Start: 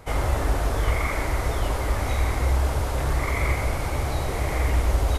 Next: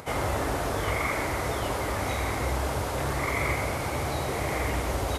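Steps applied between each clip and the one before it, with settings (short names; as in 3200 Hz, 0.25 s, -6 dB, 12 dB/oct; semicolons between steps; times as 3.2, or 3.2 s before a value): HPF 110 Hz 12 dB/oct; upward compressor, threshold -39 dBFS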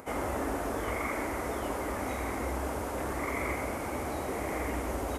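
graphic EQ 125/250/4000 Hz -11/+7/-9 dB; gain -4.5 dB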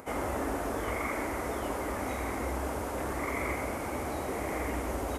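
nothing audible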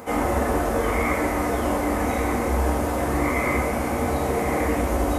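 shoebox room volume 170 m³, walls furnished, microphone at 2 m; gain +5 dB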